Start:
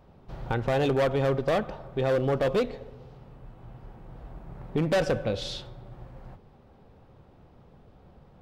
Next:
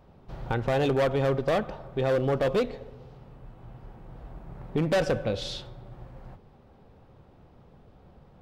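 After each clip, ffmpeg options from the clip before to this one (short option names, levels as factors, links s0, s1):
-af anull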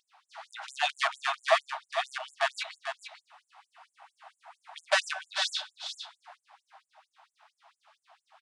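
-af "aecho=1:1:443:0.398,aresample=22050,aresample=44100,afftfilt=real='re*gte(b*sr/1024,600*pow(7100/600,0.5+0.5*sin(2*PI*4.4*pts/sr)))':imag='im*gte(b*sr/1024,600*pow(7100/600,0.5+0.5*sin(2*PI*4.4*pts/sr)))':win_size=1024:overlap=0.75,volume=2.37"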